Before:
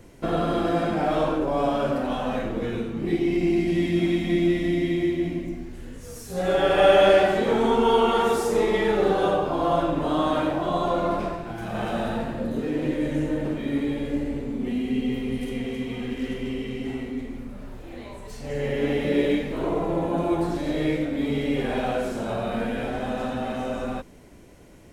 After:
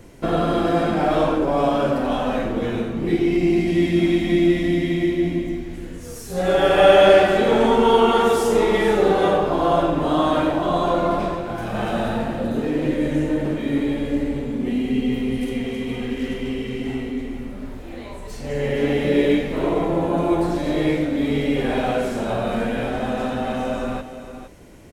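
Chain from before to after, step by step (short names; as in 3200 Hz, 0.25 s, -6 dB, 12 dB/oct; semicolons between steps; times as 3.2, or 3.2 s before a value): echo 0.462 s -11.5 dB; gain +4 dB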